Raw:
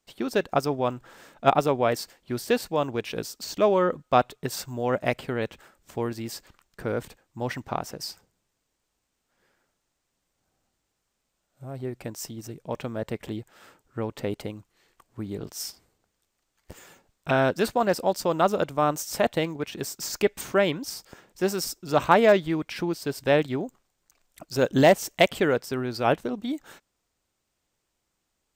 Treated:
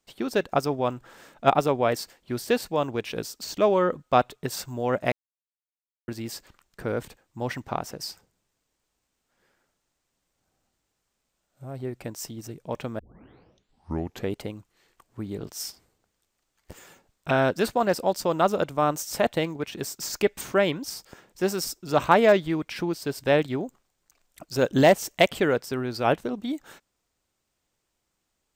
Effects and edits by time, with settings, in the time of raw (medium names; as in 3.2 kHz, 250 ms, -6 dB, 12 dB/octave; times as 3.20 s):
5.12–6.08 s: mute
12.99 s: tape start 1.35 s